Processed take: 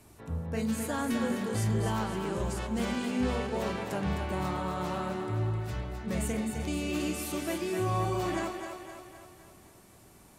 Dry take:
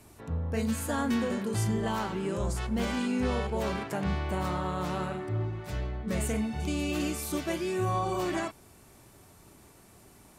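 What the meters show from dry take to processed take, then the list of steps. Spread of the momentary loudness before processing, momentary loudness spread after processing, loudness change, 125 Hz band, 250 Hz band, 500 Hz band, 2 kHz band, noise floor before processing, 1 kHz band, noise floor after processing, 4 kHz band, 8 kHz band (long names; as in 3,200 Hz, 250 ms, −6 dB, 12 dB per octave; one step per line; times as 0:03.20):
4 LU, 7 LU, −1.0 dB, −0.5 dB, −1.0 dB, −1.0 dB, −1.0 dB, −56 dBFS, −1.0 dB, −56 dBFS, −1.0 dB, −1.0 dB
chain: echo with a time of its own for lows and highs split 330 Hz, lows 90 ms, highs 258 ms, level −6.5 dB
level −2 dB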